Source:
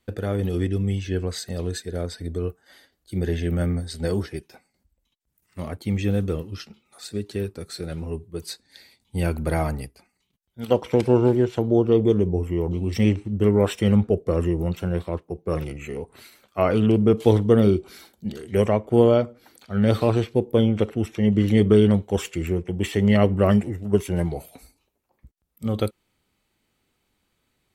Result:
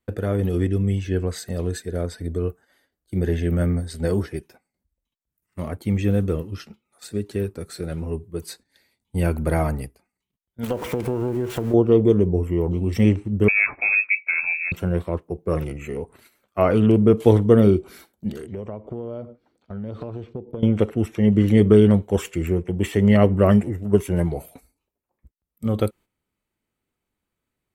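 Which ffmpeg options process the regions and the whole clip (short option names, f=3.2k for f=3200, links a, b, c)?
-filter_complex "[0:a]asettb=1/sr,asplit=3[a][b][c];[a]atrim=end=10.634[d];[b]atrim=start=10.63:end=11.74,asetpts=PTS-STARTPTS,afade=t=in:d=0.004:c=qsin,afade=t=out:st=1.106:d=0.004:c=qsin,aeval=exprs='val(0)+0.5*0.0299*sgn(val(0))':c=same,acompressor=threshold=-22dB:ratio=8:attack=3.2:release=140:knee=1:detection=peak[e];[c]atrim=start=11.736[f];[d][e]acrossfade=d=0.004:c1=hsin:c2=qsin[g];[g][f]acrossfade=d=0.004:c1=qsin:c2=hsin,asettb=1/sr,asplit=3[h][i][j];[h]atrim=end=13.484[k];[i]atrim=start=13.48:end=14.72,asetpts=PTS-STARTPTS,afade=t=in:d=0.004:c=qsin,afade=t=out:st=1.236:d=0.004:c=qsin,lowshelf=f=77:g=-10,lowpass=f=2.3k:t=q:w=0.5098,lowpass=f=2.3k:t=q:w=0.6013,lowpass=f=2.3k:t=q:w=0.9,lowpass=f=2.3k:t=q:w=2.563,afreqshift=-2700[l];[j]atrim=start=14.716[m];[k][l]acrossfade=d=0.004:c1=hsin:c2=qsin[n];[n][m]acrossfade=d=0.004:c1=qsin:c2=hsin,asettb=1/sr,asplit=3[o][p][q];[o]atrim=end=18.464[r];[p]atrim=start=18.46:end=20.63,asetpts=PTS-STARTPTS,afade=t=in:d=0.004:c=qsin,afade=t=out:st=2.166:d=0.004:c=qsin,lowpass=3.6k,equalizer=f=1.9k:t=o:w=1.3:g=-8.5,acompressor=threshold=-31dB:ratio=6:attack=3.2:release=140:knee=1:detection=peak[s];[q]atrim=start=20.626[t];[r][s]acrossfade=d=0.004:c1=hsin:c2=qsin[u];[u][t]acrossfade=d=0.004:c1=qsin:c2=hsin,agate=range=-11dB:threshold=-45dB:ratio=16:detection=peak,equalizer=f=4.3k:w=0.89:g=-7,bandreject=f=790:w=21,volume=2.5dB"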